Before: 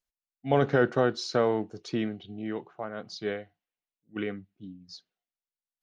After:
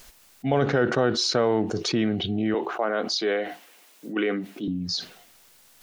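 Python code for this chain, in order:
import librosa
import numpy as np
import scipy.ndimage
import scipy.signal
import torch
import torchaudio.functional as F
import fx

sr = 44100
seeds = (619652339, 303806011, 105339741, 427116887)

y = fx.highpass(x, sr, hz=260.0, slope=24, at=(2.54, 4.68))
y = fx.env_flatten(y, sr, amount_pct=70)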